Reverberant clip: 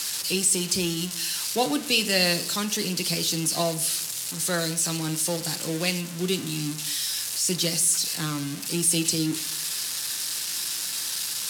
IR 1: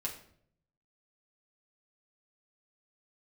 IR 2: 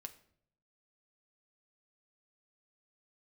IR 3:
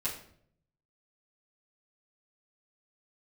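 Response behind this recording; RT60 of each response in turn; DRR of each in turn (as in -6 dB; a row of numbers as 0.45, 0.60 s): 2; 0.65, 0.65, 0.65 s; -3.0, 6.5, -11.0 dB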